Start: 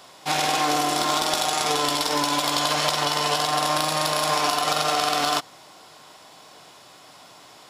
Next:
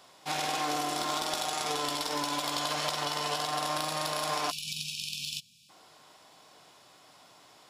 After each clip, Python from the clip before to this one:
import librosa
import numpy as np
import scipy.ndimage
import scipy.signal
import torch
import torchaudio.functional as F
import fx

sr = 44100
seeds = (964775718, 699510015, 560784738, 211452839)

y = fx.spec_erase(x, sr, start_s=4.51, length_s=1.19, low_hz=240.0, high_hz=2300.0)
y = y * librosa.db_to_amplitude(-9.0)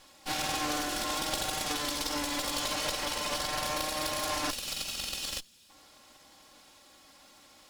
y = fx.lower_of_two(x, sr, delay_ms=3.6)
y = fx.peak_eq(y, sr, hz=1000.0, db=-3.5, octaves=2.6)
y = y * librosa.db_to_amplitude(3.0)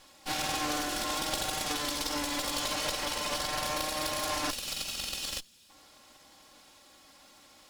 y = x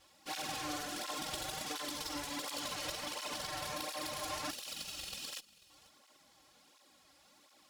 y = x + 10.0 ** (-21.5 / 20.0) * np.pad(x, (int(489 * sr / 1000.0), 0))[:len(x)]
y = fx.flanger_cancel(y, sr, hz=1.4, depth_ms=5.0)
y = y * librosa.db_to_amplitude(-5.0)